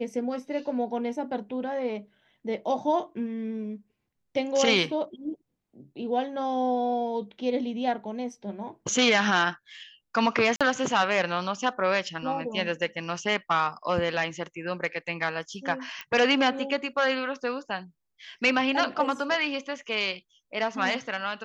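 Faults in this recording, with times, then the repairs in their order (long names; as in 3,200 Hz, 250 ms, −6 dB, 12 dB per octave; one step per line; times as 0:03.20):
0:10.56–0:10.61: drop-out 46 ms
0:16.01: click −21 dBFS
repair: click removal
repair the gap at 0:10.56, 46 ms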